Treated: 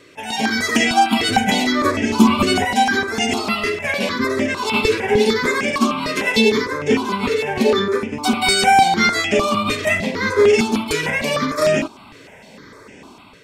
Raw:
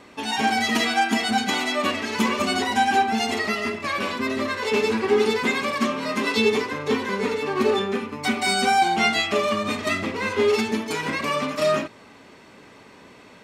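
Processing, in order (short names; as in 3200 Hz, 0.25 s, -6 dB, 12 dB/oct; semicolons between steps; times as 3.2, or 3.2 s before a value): 1.2–2.65 low shelf 370 Hz +10.5 dB; AGC gain up to 5.5 dB; step phaser 6.6 Hz 220–4100 Hz; gain +3.5 dB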